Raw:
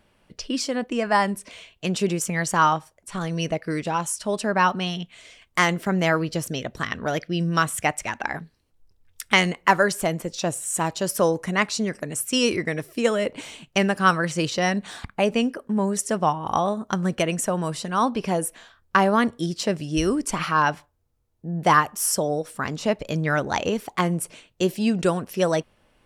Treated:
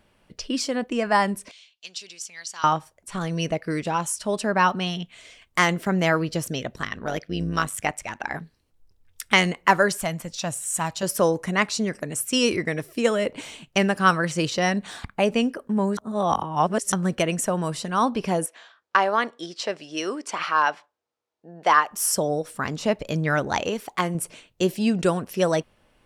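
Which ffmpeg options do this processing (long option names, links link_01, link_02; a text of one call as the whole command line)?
ffmpeg -i in.wav -filter_complex "[0:a]asettb=1/sr,asplit=3[link_01][link_02][link_03];[link_01]atrim=end=1.514[link_04];[link_02]atrim=start=1.51:end=2.64,asetpts=PTS-STARTPTS,afade=type=in:duration=0.004:curve=qsin,afade=type=out:start_time=1.126:duration=0.004:curve=qsin,bandpass=frequency=4700:width_type=q:width=2[link_05];[link_03]atrim=start=2.636[link_06];[link_04][link_05]acrossfade=duration=0.004:curve1=hsin:curve2=qsin[link_07];[link_07][link_06]acrossfade=duration=0.004:curve1=qsin:curve2=hsin,asplit=3[link_08][link_09][link_10];[link_08]afade=type=out:start_time=6.74:duration=0.02[link_11];[link_09]tremolo=f=100:d=0.71,afade=type=in:start_time=6.74:duration=0.02,afade=type=out:start_time=8.3:duration=0.02[link_12];[link_10]afade=type=in:start_time=8.3:duration=0.02[link_13];[link_11][link_12][link_13]amix=inputs=3:normalize=0,asettb=1/sr,asplit=3[link_14][link_15][link_16];[link_14]atrim=end=9.974[link_17];[link_15]atrim=start=9.97:end=11.03,asetpts=PTS-STARTPTS,afade=type=in:duration=0.004:curve=qsin,afade=type=out:start_time=1.056:duration=0.004:curve=qsin,equalizer=frequency=390:width=1.5:gain=-13[link_18];[link_16]atrim=start=11.026[link_19];[link_17][link_18]acrossfade=duration=0.004:curve1=hsin:curve2=qsin[link_20];[link_20][link_19]acrossfade=duration=0.004:curve1=qsin:curve2=hsin,asettb=1/sr,asplit=3[link_21][link_22][link_23];[link_21]atrim=end=18.464[link_24];[link_22]atrim=start=18.46:end=21.91,asetpts=PTS-STARTPTS,afade=type=in:duration=0.004:curve=qsin,afade=type=out:start_time=3.446:duration=0.004:curve=qsin,highpass=490,lowpass=5600[link_25];[link_23]atrim=start=21.906[link_26];[link_24][link_25]acrossfade=duration=0.004:curve1=hsin:curve2=qsin[link_27];[link_27][link_26]acrossfade=duration=0.004:curve1=qsin:curve2=hsin,asettb=1/sr,asplit=3[link_28][link_29][link_30];[link_28]atrim=end=23.644[link_31];[link_29]atrim=start=23.64:end=24.15,asetpts=PTS-STARTPTS,afade=type=in:duration=0.004:curve=qsin,afade=type=out:start_time=0.506:duration=0.004:curve=qsin,lowshelf=frequency=330:gain=-6.5[link_32];[link_30]atrim=start=24.146[link_33];[link_31][link_32]acrossfade=duration=0.004:curve1=hsin:curve2=qsin[link_34];[link_34][link_33]acrossfade=duration=0.004:curve1=qsin:curve2=hsin,asplit=3[link_35][link_36][link_37];[link_35]atrim=end=15.972[link_38];[link_36]atrim=start=15.968:end=16.922,asetpts=PTS-STARTPTS,areverse[link_39];[link_37]atrim=start=16.918[link_40];[link_38][link_39]acrossfade=duration=0.004:curve1=hsin:curve2=hsin[link_41];[link_41][link_40]acrossfade=duration=0.004:curve1=hsin:curve2=hsin" out.wav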